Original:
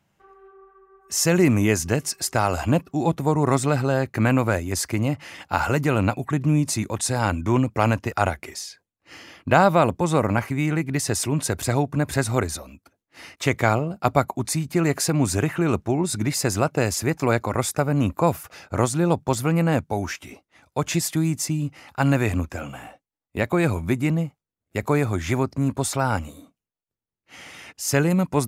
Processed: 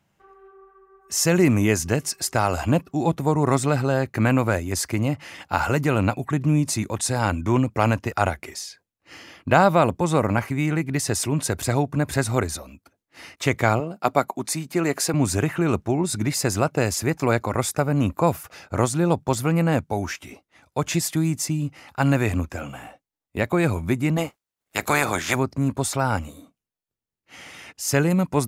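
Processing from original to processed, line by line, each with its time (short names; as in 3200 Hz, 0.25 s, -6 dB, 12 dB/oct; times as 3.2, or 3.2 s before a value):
13.8–15.14 HPF 210 Hz
24.16–25.34 spectral limiter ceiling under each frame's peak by 23 dB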